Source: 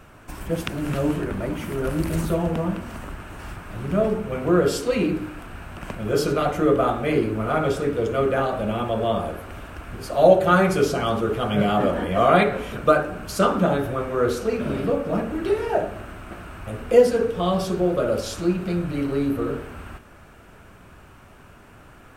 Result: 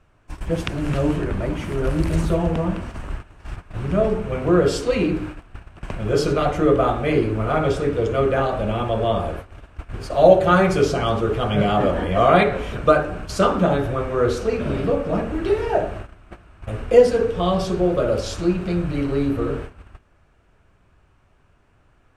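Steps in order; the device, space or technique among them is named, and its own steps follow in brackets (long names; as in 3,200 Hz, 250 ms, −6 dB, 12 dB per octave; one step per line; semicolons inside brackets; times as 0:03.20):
noise gate −34 dBFS, range −15 dB
low-pass filter 7,700 Hz 12 dB per octave
low shelf boost with a cut just above (low-shelf EQ 96 Hz +8 dB; parametric band 220 Hz −4 dB 0.58 octaves)
parametric band 1,400 Hz −2.5 dB 0.25 octaves
level +2 dB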